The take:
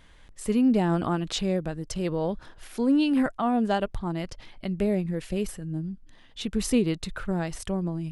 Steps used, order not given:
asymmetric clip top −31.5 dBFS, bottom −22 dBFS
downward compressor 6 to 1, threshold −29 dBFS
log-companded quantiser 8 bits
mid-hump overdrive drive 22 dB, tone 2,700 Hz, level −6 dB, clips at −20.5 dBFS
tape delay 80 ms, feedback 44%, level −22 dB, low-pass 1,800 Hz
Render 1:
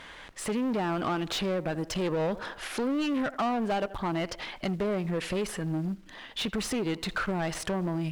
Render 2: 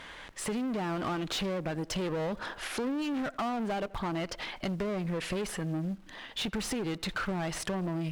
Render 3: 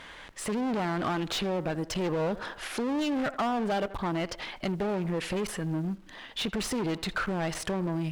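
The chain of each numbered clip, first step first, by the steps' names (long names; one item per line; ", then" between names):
tape delay, then downward compressor, then log-companded quantiser, then asymmetric clip, then mid-hump overdrive
log-companded quantiser, then mid-hump overdrive, then tape delay, then downward compressor, then asymmetric clip
log-companded quantiser, then asymmetric clip, then tape delay, then downward compressor, then mid-hump overdrive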